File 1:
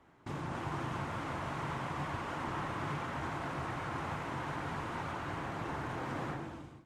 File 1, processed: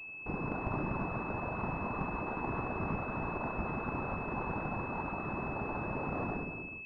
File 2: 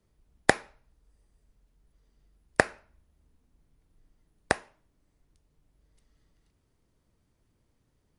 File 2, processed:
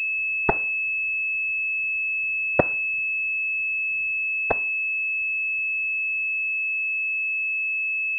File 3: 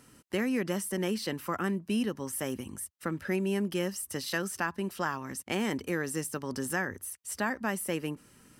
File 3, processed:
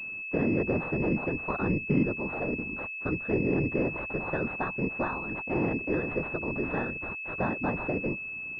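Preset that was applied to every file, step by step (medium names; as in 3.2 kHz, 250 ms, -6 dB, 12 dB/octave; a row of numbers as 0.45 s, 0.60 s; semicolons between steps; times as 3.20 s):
vibrato 5.2 Hz 72 cents; whisper effect; class-D stage that switches slowly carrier 2.6 kHz; trim +3 dB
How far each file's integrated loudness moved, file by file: +2.0 LU, +6.5 LU, +3.0 LU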